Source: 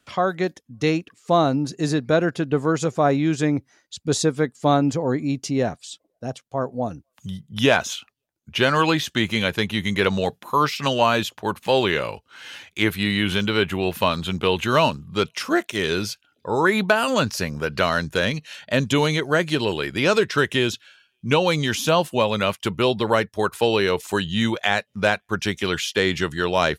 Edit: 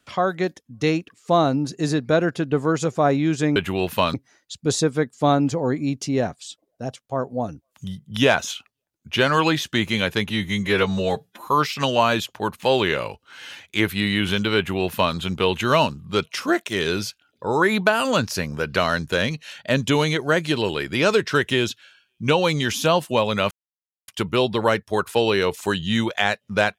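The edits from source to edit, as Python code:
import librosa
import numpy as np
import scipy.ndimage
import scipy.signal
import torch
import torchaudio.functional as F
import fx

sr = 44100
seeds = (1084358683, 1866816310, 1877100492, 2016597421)

y = fx.edit(x, sr, fx.stretch_span(start_s=9.72, length_s=0.78, factor=1.5),
    fx.duplicate(start_s=13.6, length_s=0.58, to_s=3.56),
    fx.insert_silence(at_s=22.54, length_s=0.57), tone=tone)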